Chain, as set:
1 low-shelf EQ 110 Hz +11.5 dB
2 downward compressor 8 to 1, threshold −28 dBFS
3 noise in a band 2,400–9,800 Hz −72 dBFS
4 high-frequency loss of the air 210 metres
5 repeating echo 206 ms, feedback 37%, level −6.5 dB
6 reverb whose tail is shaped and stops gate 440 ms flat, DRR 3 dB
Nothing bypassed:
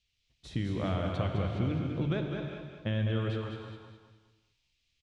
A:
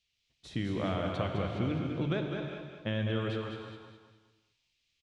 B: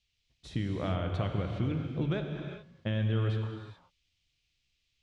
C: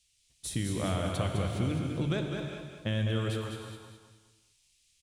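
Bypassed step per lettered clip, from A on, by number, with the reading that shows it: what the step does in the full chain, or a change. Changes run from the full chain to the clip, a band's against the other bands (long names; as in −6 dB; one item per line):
1, 125 Hz band −4.5 dB
5, echo-to-direct ratio −0.5 dB to −3.0 dB
4, 4 kHz band +4.0 dB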